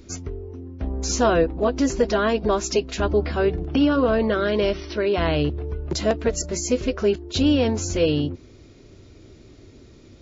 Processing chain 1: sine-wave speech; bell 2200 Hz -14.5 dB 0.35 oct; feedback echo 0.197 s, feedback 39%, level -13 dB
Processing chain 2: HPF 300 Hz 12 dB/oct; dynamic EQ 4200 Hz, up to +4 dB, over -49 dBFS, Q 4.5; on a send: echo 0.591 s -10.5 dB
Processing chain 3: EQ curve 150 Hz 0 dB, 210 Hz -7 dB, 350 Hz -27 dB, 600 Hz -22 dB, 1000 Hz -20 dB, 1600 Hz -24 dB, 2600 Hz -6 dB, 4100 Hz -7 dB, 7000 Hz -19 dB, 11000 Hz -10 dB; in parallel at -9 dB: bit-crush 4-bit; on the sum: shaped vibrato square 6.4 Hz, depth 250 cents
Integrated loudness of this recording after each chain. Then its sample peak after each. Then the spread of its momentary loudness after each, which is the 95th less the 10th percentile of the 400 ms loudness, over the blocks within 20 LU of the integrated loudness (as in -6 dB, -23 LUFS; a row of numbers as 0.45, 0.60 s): -22.0, -23.5, -30.5 LUFS; -4.5, -9.0, -14.0 dBFS; 18, 13, 10 LU